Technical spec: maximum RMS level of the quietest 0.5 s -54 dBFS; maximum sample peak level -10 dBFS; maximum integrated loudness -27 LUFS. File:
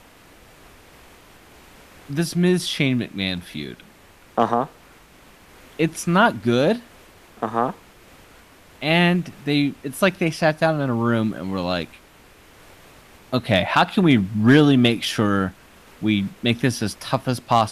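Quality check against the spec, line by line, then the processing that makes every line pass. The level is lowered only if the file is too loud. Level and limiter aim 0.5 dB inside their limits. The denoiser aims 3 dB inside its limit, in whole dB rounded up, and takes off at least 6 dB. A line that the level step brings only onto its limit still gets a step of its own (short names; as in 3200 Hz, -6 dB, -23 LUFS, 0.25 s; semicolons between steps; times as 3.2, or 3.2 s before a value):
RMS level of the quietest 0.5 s -50 dBFS: fail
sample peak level -5.0 dBFS: fail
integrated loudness -21.0 LUFS: fail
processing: gain -6.5 dB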